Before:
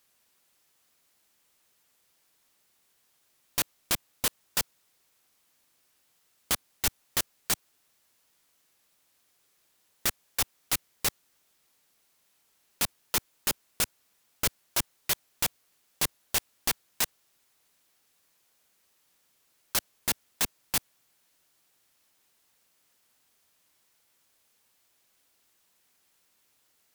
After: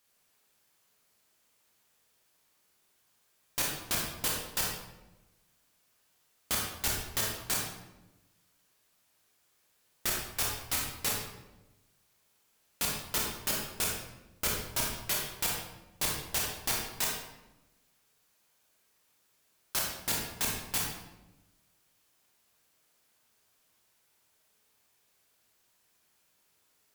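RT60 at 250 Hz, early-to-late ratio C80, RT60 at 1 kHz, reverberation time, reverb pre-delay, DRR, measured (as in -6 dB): 1.4 s, 4.5 dB, 0.90 s, 1.0 s, 23 ms, -2.5 dB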